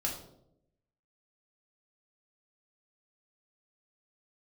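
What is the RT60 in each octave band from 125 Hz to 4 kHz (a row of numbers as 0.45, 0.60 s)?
1.1, 1.0, 0.95, 0.65, 0.45, 0.45 s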